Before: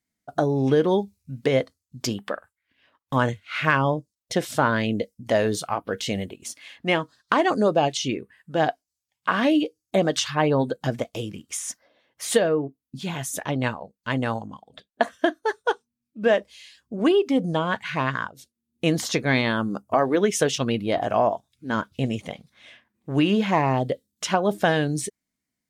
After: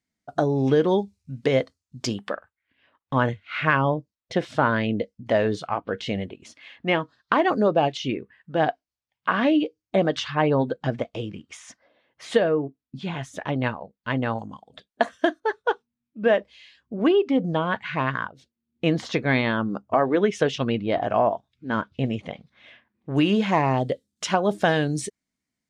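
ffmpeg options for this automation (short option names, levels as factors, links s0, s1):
-af "asetnsamples=n=441:p=0,asendcmd='2.34 lowpass f 3300;14.39 lowpass f 8200;15.4 lowpass f 3300;23.16 lowpass f 8500',lowpass=7100"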